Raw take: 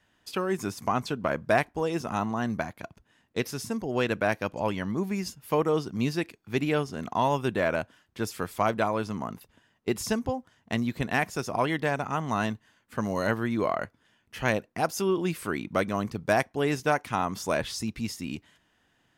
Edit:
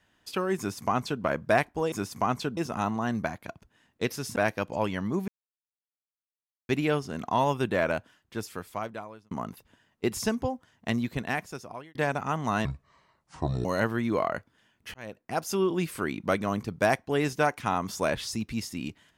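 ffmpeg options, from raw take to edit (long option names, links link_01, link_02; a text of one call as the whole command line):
ffmpeg -i in.wav -filter_complex "[0:a]asplit=11[link_01][link_02][link_03][link_04][link_05][link_06][link_07][link_08][link_09][link_10][link_11];[link_01]atrim=end=1.922[link_12];[link_02]atrim=start=0.578:end=1.232[link_13];[link_03]atrim=start=1.918:end=3.712[link_14];[link_04]atrim=start=4.198:end=5.12,asetpts=PTS-STARTPTS,afade=type=out:start_time=0.918:duration=0.004:curve=hsin[link_15];[link_05]atrim=start=5.12:end=6.53,asetpts=PTS-STARTPTS,volume=0[link_16];[link_06]atrim=start=6.53:end=9.15,asetpts=PTS-STARTPTS,afade=type=in:duration=0.004:curve=hsin,afade=type=out:start_time=1.25:duration=1.37[link_17];[link_07]atrim=start=9.15:end=11.79,asetpts=PTS-STARTPTS,afade=type=in:duration=0.004:curve=hsin,afade=type=out:start_time=1.65:duration=0.99[link_18];[link_08]atrim=start=11.79:end=12.494,asetpts=PTS-STARTPTS,afade=type=in:duration=0.004:curve=hsin[link_19];[link_09]atrim=start=12.49:end=13.12,asetpts=PTS-STARTPTS,asetrate=27783,aresample=44100[link_20];[link_10]atrim=start=13.116:end=14.41,asetpts=PTS-STARTPTS,afade=type=out:start_time=1.29:duration=0.004:curve=hsin[link_21];[link_11]atrim=start=14.41,asetpts=PTS-STARTPTS,afade=type=in:duration=0.61[link_22];[link_12][link_13]acrossfade=duration=0.004:curve1=hsin:curve2=hsin[link_23];[link_23][link_14]acrossfade=duration=0.004:curve1=hsin:curve2=hsin[link_24];[link_15][link_16][link_17][link_18][link_19]concat=n=5:v=0:a=1[link_25];[link_24][link_25]acrossfade=duration=0.004:curve1=hsin:curve2=hsin[link_26];[link_26][link_20]acrossfade=duration=0.004:curve1=hsin:curve2=hsin[link_27];[link_21][link_22]concat=n=2:v=0:a=1[link_28];[link_27][link_28]acrossfade=duration=0.004:curve1=hsin:curve2=hsin" out.wav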